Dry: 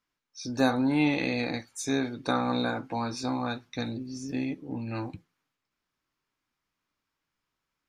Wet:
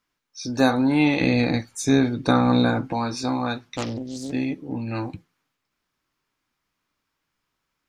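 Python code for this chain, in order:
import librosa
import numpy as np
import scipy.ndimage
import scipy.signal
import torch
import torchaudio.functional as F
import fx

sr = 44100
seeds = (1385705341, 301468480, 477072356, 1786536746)

y = fx.low_shelf(x, sr, hz=240.0, db=10.5, at=(1.21, 2.93))
y = fx.doppler_dist(y, sr, depth_ms=0.73, at=(3.6, 4.33))
y = F.gain(torch.from_numpy(y), 5.5).numpy()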